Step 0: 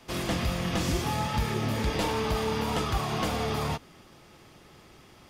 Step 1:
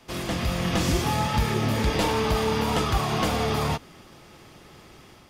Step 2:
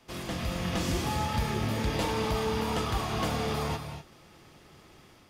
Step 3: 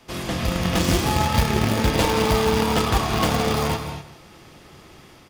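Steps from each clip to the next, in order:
automatic gain control gain up to 4.5 dB
reverb whose tail is shaped and stops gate 270 ms rising, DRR 8 dB; level −6.5 dB
in parallel at −10 dB: bit reduction 4 bits; on the sum: single-tap delay 159 ms −13.5 dB; level +8 dB

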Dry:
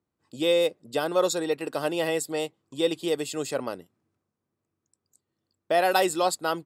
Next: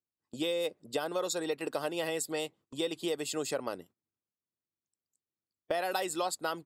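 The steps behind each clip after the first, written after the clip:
noise gate −52 dBFS, range −17 dB
harmonic and percussive parts rebalanced harmonic −5 dB
downward compressor, threshold −29 dBFS, peak gain reduction 9 dB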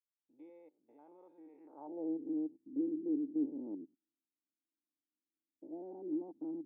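spectrum averaged block by block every 100 ms
formant resonators in series u
band-pass filter sweep 2,300 Hz → 280 Hz, 0:01.59–0:02.15
level +10 dB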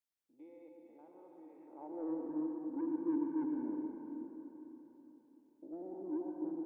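soft clipping −32.5 dBFS, distortion −15 dB
dense smooth reverb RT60 3.9 s, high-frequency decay 0.85×, pre-delay 80 ms, DRR 0.5 dB

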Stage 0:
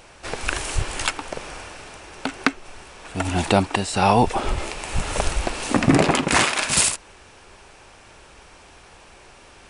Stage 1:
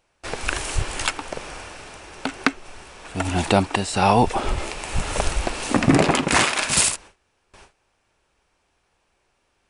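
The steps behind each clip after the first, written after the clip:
noise gate with hold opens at −35 dBFS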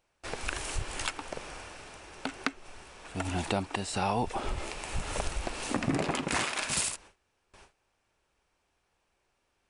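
downward compressor 2 to 1, threshold −22 dBFS, peak gain reduction 7 dB
level −7.5 dB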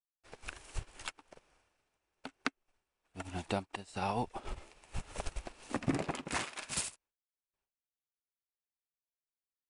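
expander for the loud parts 2.5 to 1, over −50 dBFS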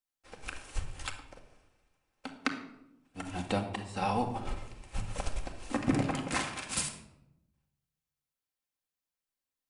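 rectangular room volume 2,400 cubic metres, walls furnished, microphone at 2.1 metres
level +2 dB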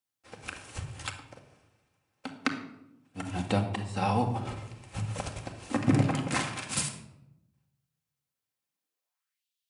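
high-pass filter sweep 110 Hz → 3,200 Hz, 0:08.66–0:09.46
level +2 dB

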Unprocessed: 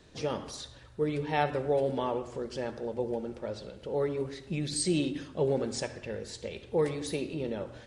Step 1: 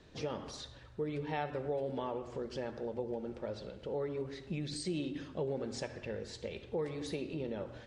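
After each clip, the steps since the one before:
downward compressor 2.5 to 1, threshold −34 dBFS, peak gain reduction 8 dB
high-frequency loss of the air 73 metres
level −1.5 dB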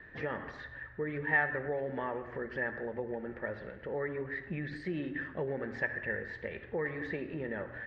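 low-pass with resonance 1,800 Hz, resonance Q 13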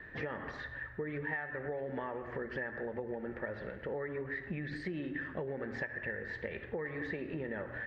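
downward compressor 12 to 1, threshold −37 dBFS, peak gain reduction 14.5 dB
level +2.5 dB

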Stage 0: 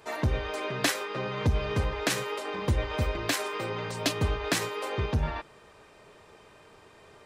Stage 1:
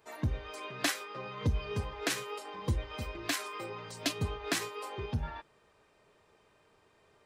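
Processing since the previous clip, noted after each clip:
noise reduction from a noise print of the clip's start 8 dB
level −4 dB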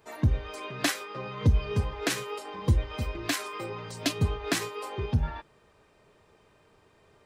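low-shelf EQ 300 Hz +6 dB
level +3 dB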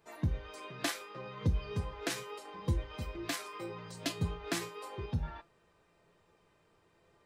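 tuned comb filter 170 Hz, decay 0.24 s, harmonics all, mix 70%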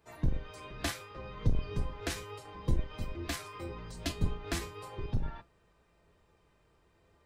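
sub-octave generator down 2 octaves, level +4 dB
level −1 dB

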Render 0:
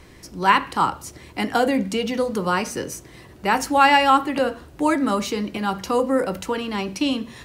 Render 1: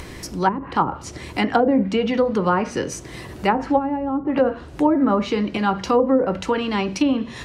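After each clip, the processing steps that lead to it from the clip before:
treble cut that deepens with the level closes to 320 Hz, closed at −13 dBFS
in parallel at −2.5 dB: upward compression, threshold −24 dBFS
on the sum: level −1 dB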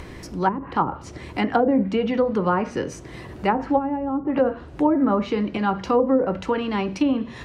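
high-shelf EQ 3,900 Hz −10.5 dB
level −1.5 dB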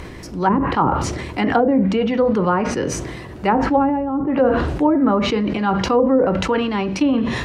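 level that may fall only so fast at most 33 dB per second
level +2.5 dB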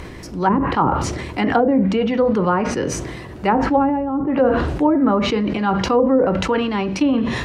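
no processing that can be heard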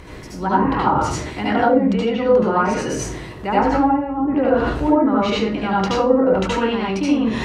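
convolution reverb RT60 0.30 s, pre-delay 69 ms, DRR −6 dB
level −6.5 dB

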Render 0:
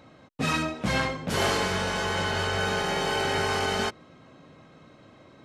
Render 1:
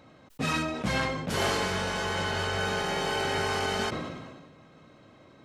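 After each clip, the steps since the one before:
level that may fall only so fast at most 37 dB per second
level −2.5 dB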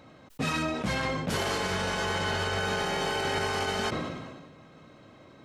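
brickwall limiter −22 dBFS, peak gain reduction 8 dB
level +2 dB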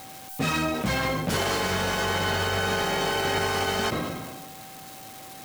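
spike at every zero crossing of −36 dBFS
steady tone 770 Hz −47 dBFS
centre clipping without the shift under −49.5 dBFS
level +3.5 dB

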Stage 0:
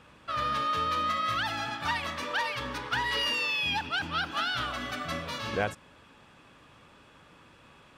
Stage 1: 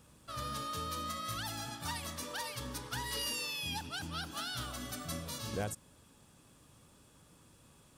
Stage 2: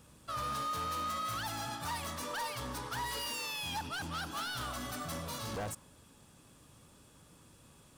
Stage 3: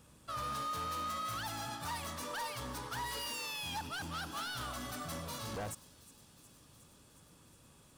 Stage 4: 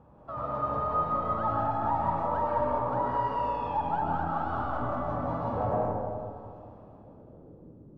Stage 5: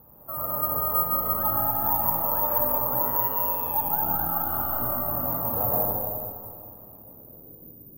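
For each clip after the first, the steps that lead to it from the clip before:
drawn EQ curve 130 Hz 0 dB, 1,700 Hz −12 dB, 2,500 Hz −12 dB, 9,600 Hz +12 dB; level −1.5 dB
hard clipping −39.5 dBFS, distortion −9 dB; dynamic equaliser 1,000 Hz, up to +6 dB, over −59 dBFS, Q 0.98; level +2 dB
delay with a high-pass on its return 363 ms, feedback 75%, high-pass 4,700 Hz, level −15.5 dB; level −2 dB
low-pass filter sweep 830 Hz → 310 Hz, 0:06.65–0:07.75; comb and all-pass reverb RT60 2.3 s, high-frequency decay 0.35×, pre-delay 85 ms, DRR −4 dB; level +4.5 dB
bad sample-rate conversion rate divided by 3×, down none, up zero stuff; level −1 dB

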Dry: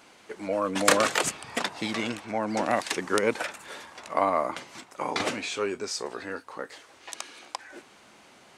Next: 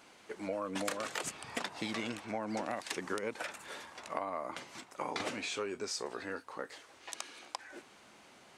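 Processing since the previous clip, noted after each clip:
downward compressor 16 to 1, threshold −28 dBFS, peak gain reduction 14.5 dB
level −4.5 dB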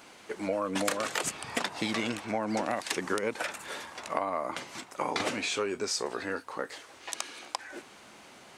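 high-shelf EQ 12,000 Hz +3.5 dB
level +6.5 dB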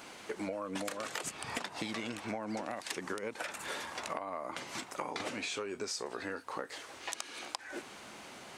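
downward compressor, threshold −38 dBFS, peak gain reduction 14 dB
level +2.5 dB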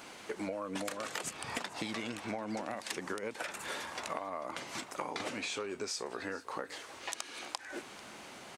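single-tap delay 443 ms −19.5 dB

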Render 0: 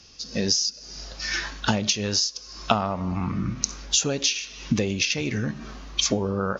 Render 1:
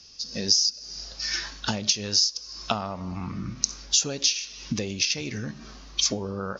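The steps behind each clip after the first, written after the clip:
parametric band 5,100 Hz +9 dB 0.89 octaves
level −6 dB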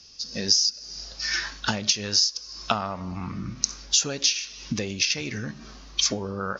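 dynamic equaliser 1,600 Hz, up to +6 dB, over −43 dBFS, Q 1.1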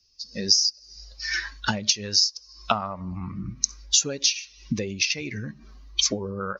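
spectral dynamics exaggerated over time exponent 1.5
level +3 dB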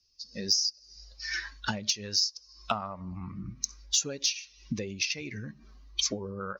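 soft clipping −5.5 dBFS, distortion −23 dB
level −6 dB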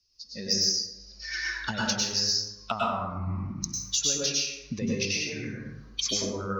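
dense smooth reverb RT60 1 s, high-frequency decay 0.5×, pre-delay 90 ms, DRR −4.5 dB
level −1.5 dB

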